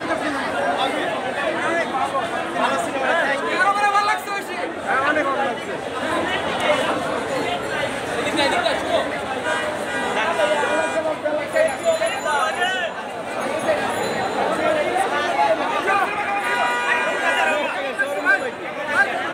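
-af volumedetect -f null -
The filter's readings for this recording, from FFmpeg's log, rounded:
mean_volume: -21.3 dB
max_volume: -6.1 dB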